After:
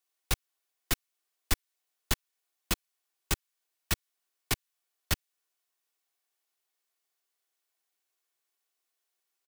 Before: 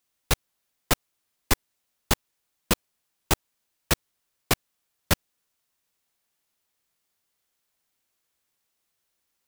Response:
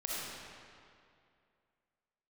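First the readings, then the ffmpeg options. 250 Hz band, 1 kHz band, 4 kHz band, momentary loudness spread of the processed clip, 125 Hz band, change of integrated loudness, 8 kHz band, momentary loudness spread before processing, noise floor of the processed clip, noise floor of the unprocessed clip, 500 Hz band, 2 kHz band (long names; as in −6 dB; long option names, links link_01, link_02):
−9.5 dB, −10.0 dB, −5.5 dB, 1 LU, −6.5 dB, −6.5 dB, −5.5 dB, 1 LU, −84 dBFS, −78 dBFS, −12.0 dB, −6.5 dB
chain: -filter_complex "[0:a]aecho=1:1:2.7:0.34,acrossover=split=300|1200|2000[link_01][link_02][link_03][link_04];[link_01]acrusher=bits=4:mix=0:aa=0.000001[link_05];[link_02]acompressor=threshold=-40dB:ratio=6[link_06];[link_05][link_06][link_03][link_04]amix=inputs=4:normalize=0,volume=-6dB"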